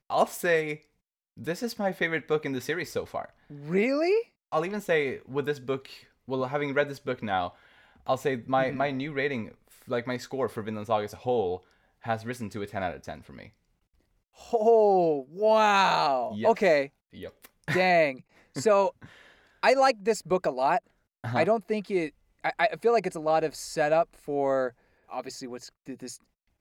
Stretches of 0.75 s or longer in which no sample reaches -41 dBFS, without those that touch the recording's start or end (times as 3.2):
13.47–14.41